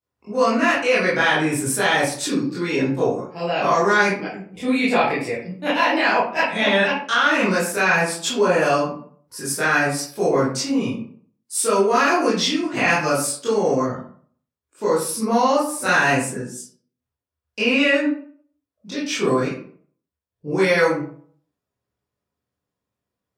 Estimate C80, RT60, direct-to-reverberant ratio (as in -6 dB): 8.5 dB, 0.50 s, -9.5 dB